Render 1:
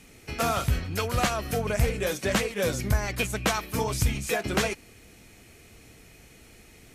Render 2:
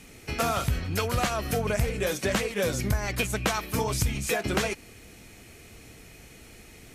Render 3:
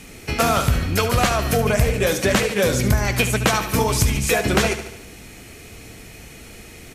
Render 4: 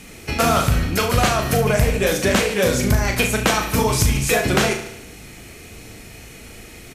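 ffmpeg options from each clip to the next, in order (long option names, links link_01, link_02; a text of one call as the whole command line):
ffmpeg -i in.wav -af "acompressor=threshold=-27dB:ratio=2.5,volume=3dB" out.wav
ffmpeg -i in.wav -af "aecho=1:1:73|146|219|292|365|438:0.282|0.158|0.0884|0.0495|0.0277|0.0155,volume=8dB" out.wav
ffmpeg -i in.wav -filter_complex "[0:a]asplit=2[link_01][link_02];[link_02]adelay=37,volume=-6dB[link_03];[link_01][link_03]amix=inputs=2:normalize=0" out.wav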